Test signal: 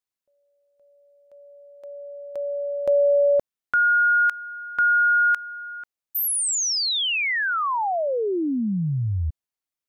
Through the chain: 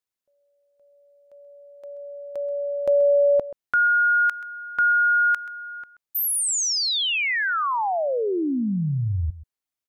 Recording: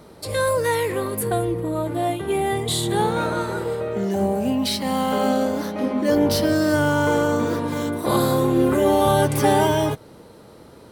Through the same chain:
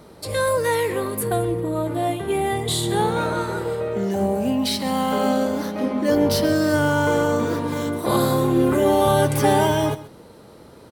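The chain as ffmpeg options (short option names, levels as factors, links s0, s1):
-af "aecho=1:1:131:0.158"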